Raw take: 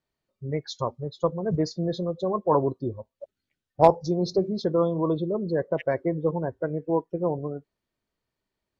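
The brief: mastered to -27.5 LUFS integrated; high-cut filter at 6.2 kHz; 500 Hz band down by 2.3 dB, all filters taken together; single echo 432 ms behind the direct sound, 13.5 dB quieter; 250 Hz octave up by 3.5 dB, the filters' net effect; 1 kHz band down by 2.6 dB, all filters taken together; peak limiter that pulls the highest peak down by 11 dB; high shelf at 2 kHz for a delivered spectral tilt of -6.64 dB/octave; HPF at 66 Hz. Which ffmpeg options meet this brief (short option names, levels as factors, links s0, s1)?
-af "highpass=66,lowpass=6200,equalizer=f=250:t=o:g=8,equalizer=f=500:t=o:g=-5,equalizer=f=1000:t=o:g=-3.5,highshelf=f=2000:g=7.5,alimiter=limit=0.168:level=0:latency=1,aecho=1:1:432:0.211"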